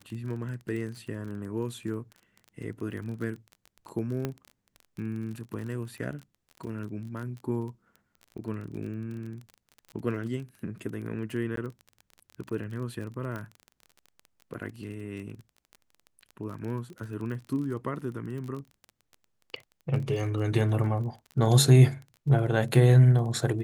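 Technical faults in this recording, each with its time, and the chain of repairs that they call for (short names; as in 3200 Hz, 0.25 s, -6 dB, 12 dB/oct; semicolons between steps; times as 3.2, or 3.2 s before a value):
crackle 28/s -36 dBFS
4.25 pop -17 dBFS
11.56–11.57 gap 13 ms
13.36 pop -24 dBFS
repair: de-click; interpolate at 11.56, 13 ms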